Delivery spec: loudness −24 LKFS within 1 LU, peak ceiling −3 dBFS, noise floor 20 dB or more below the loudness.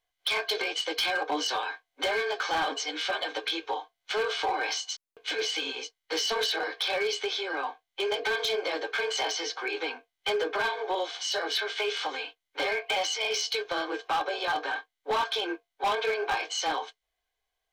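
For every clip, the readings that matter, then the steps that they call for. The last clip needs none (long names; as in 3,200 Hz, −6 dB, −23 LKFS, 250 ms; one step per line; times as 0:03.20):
share of clipped samples 1.4%; peaks flattened at −22.5 dBFS; integrated loudness −29.5 LKFS; sample peak −22.5 dBFS; target loudness −24.0 LKFS
→ clipped peaks rebuilt −22.5 dBFS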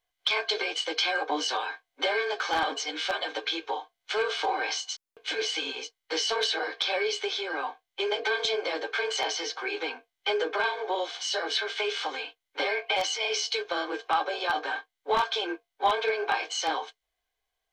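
share of clipped samples 0.0%; integrated loudness −29.0 LKFS; sample peak −13.5 dBFS; target loudness −24.0 LKFS
→ level +5 dB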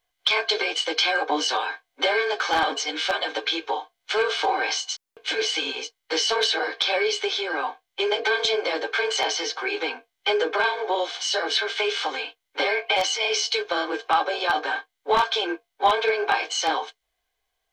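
integrated loudness −24.0 LKFS; sample peak −8.5 dBFS; background noise floor −79 dBFS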